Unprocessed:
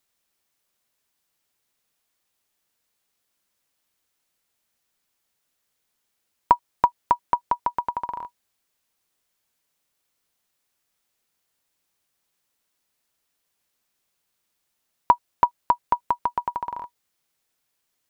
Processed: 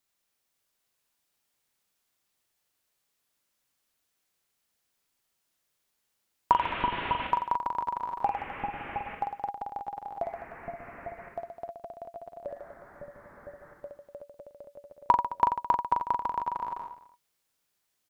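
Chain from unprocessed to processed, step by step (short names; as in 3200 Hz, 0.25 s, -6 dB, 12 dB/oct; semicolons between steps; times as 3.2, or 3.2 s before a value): 6.52–7.27 delta modulation 16 kbps, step -24.5 dBFS; reverse bouncing-ball echo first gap 40 ms, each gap 1.2×, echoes 5; echoes that change speed 0.504 s, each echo -3 st, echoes 3, each echo -6 dB; gain -5.5 dB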